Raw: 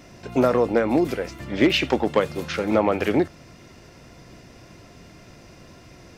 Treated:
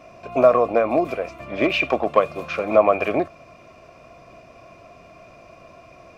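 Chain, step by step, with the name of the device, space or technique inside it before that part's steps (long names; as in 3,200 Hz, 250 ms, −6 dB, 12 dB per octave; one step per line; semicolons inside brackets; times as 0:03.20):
inside a helmet (high-shelf EQ 4,900 Hz −4.5 dB; hollow resonant body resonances 660/1,100/2,400 Hz, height 18 dB, ringing for 25 ms)
level −6.5 dB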